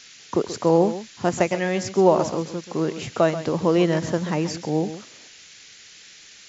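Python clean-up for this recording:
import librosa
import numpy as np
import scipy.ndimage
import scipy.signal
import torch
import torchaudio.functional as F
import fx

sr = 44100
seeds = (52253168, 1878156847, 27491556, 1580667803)

y = fx.noise_reduce(x, sr, print_start_s=5.97, print_end_s=6.47, reduce_db=19.0)
y = fx.fix_echo_inverse(y, sr, delay_ms=133, level_db=-12.5)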